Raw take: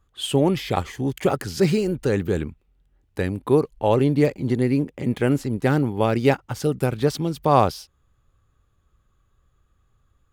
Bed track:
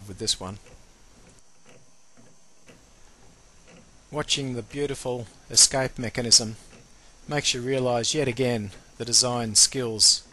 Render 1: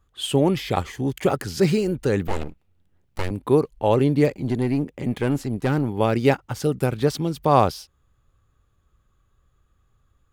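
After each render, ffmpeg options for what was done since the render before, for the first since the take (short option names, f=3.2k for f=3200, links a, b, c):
-filter_complex "[0:a]asettb=1/sr,asplit=3[a][b][c];[a]atrim=end=2.274[d];[b]atrim=start=2.27:end=3.31,asetpts=PTS-STARTPTS,afade=t=in:d=0.004:c=qsin,afade=t=out:st=1.036:d=0.004:c=qsin,aeval=exprs='abs(val(0))':c=same[e];[c]atrim=start=3.306[f];[d][e]acrossfade=d=0.004:c1=hsin:c2=qsin[g];[g][f]acrossfade=d=0.004:c1=qsin:c2=hsin,asettb=1/sr,asplit=3[h][i][j];[h]atrim=end=4.354[k];[i]atrim=start=4.35:end=5.89,asetpts=PTS-STARTPTS,afade=t=in:d=0.004:c=qsin,afade=t=out:st=1.536:d=0.004:c=qsin,aeval=exprs='(tanh(5.01*val(0)+0.2)-tanh(0.2))/5.01':c=same[l];[j]atrim=start=5.886[m];[k][l]acrossfade=d=0.004:c1=hsin:c2=qsin[n];[n][m]acrossfade=d=0.004:c1=qsin:c2=hsin"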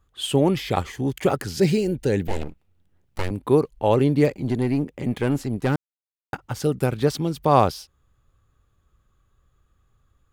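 -filter_complex "[0:a]asettb=1/sr,asplit=3[a][b][c];[a]atrim=end=1.574[d];[b]atrim=start=1.57:end=2.43,asetpts=PTS-STARTPTS,afade=t=in:d=0.004:c=qsin,afade=t=out:st=0.856:d=0.004:c=qsin,equalizer=f=1.2k:w=3.6:g=-15[e];[c]atrim=start=2.426[f];[d][e]acrossfade=d=0.004:c1=hsin:c2=qsin[g];[g][f]acrossfade=d=0.004:c1=qsin:c2=hsin,asplit=3[h][i][j];[h]atrim=end=5.76,asetpts=PTS-STARTPTS,afade=t=out:st=5.756:d=0.004:c=hsin[k];[i]atrim=start=5.76:end=6.33,asetpts=PTS-STARTPTS,volume=0[l];[j]atrim=start=6.33,asetpts=PTS-STARTPTS,afade=t=in:d=0.004:c=hsin[m];[k][l][m]concat=n=3:v=0:a=1"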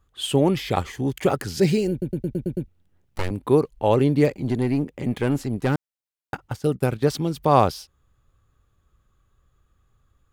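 -filter_complex "[0:a]asettb=1/sr,asplit=3[a][b][c];[a]atrim=end=6.484[d];[b]atrim=start=6.48:end=7.1,asetpts=PTS-STARTPTS,afade=t=in:d=0.004:c=qsin,afade=t=out:st=0.616:d=0.004:c=qsin,agate=range=-14dB:threshold=-32dB:ratio=16:release=100:detection=peak[e];[c]atrim=start=7.096[f];[d][e]acrossfade=d=0.004:c1=hsin:c2=qsin[g];[g][f]acrossfade=d=0.004:c1=qsin:c2=hsin,asplit=8[h][i][j][k][l][m][n][o];[h]atrim=end=2.022[p];[i]atrim=start=1.908:end=2.022[q];[j]atrim=start=1.908:end=2.022[r];[k]atrim=start=1.908:end=2.022[s];[l]atrim=start=1.908:end=2.022[t];[m]atrim=start=1.908:end=2.022[u];[n]atrim=start=1.908:end=2.022[v];[o]atrim=start=2.678[w];[p][q]acrossfade=d=0.004:c1=hsin:c2=hsin[x];[x][r]acrossfade=d=0.004:c1=hsin:c2=hsin[y];[y][s]acrossfade=d=0.004:c1=hsin:c2=hsin[z];[z][t]acrossfade=d=0.004:c1=hsin:c2=hsin[aa];[aa][u]acrossfade=d=0.004:c1=hsin:c2=hsin[ab];[ab][v]acrossfade=d=0.004:c1=hsin:c2=hsin[ac];[ac][w]acrossfade=d=0.004:c1=hsin:c2=hsin"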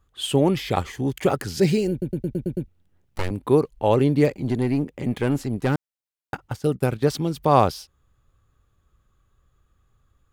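-af anull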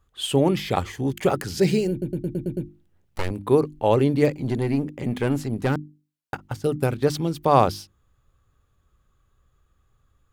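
-af "bandreject=f=50:t=h:w=6,bandreject=f=100:t=h:w=6,bandreject=f=150:t=h:w=6,bandreject=f=200:t=h:w=6,bandreject=f=250:t=h:w=6,bandreject=f=300:t=h:w=6,bandreject=f=350:t=h:w=6"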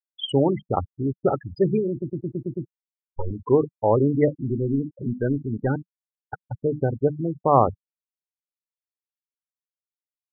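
-af "afftfilt=real='re*gte(hypot(re,im),0.126)':imag='im*gte(hypot(re,im),0.126)':win_size=1024:overlap=0.75,equalizer=f=180:t=o:w=0.28:g=-4"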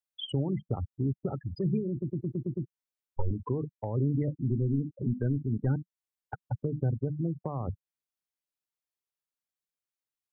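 -filter_complex "[0:a]alimiter=limit=-14dB:level=0:latency=1:release=51,acrossover=split=210[a][b];[b]acompressor=threshold=-37dB:ratio=5[c];[a][c]amix=inputs=2:normalize=0"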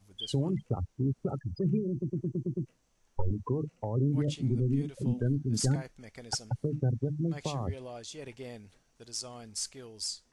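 -filter_complex "[1:a]volume=-19dB[a];[0:a][a]amix=inputs=2:normalize=0"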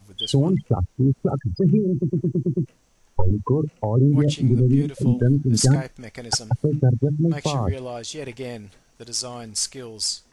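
-af "volume=11dB"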